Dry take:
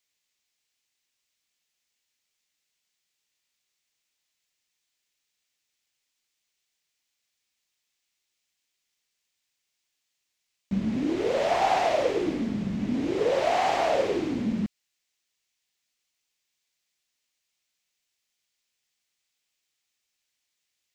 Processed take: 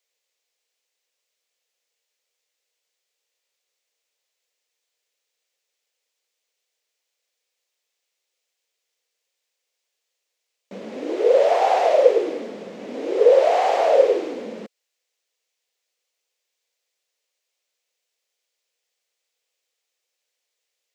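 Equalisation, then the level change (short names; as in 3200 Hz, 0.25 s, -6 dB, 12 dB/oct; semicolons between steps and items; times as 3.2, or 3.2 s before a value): resonant high-pass 490 Hz, resonance Q 4.6; 0.0 dB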